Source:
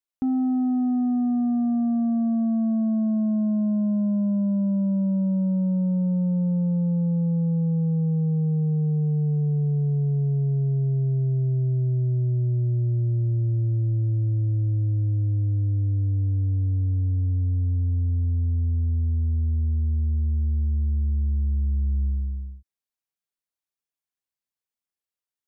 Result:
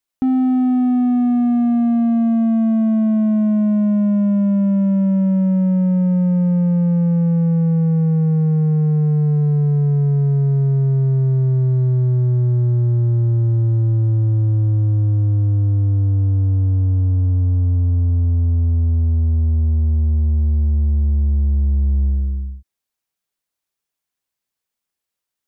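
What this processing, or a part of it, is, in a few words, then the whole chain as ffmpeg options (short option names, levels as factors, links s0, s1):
parallel distortion: -filter_complex "[0:a]asplit=2[s0][s1];[s1]asoftclip=type=hard:threshold=0.0224,volume=0.251[s2];[s0][s2]amix=inputs=2:normalize=0,volume=2.11"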